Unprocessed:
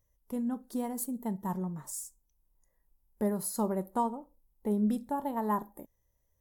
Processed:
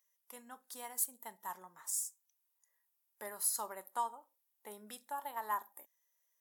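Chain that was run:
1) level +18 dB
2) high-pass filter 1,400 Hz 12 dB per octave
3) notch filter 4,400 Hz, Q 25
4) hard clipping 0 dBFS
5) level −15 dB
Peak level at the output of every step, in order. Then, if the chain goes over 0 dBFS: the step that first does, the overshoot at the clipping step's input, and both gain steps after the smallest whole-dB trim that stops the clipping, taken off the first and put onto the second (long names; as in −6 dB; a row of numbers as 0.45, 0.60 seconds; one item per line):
−1.0, −4.0, −4.0, −4.0, −19.0 dBFS
no step passes full scale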